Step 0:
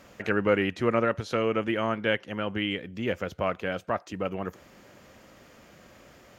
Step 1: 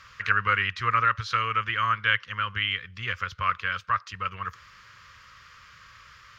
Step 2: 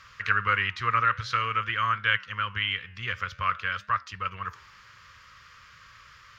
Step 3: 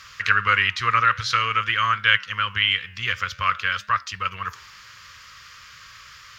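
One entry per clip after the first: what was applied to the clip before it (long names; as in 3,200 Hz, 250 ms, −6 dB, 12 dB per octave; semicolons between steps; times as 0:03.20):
drawn EQ curve 110 Hz 0 dB, 280 Hz −26 dB, 480 Hz −16 dB, 750 Hz −24 dB, 1,100 Hz +8 dB, 2,400 Hz +3 dB, 5,000 Hz +5 dB, 9,100 Hz −11 dB; level +2 dB
flanger 0.5 Hz, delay 6.1 ms, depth 8.3 ms, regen −89%; level +3.5 dB
high-shelf EQ 2,700 Hz +12 dB; level +2.5 dB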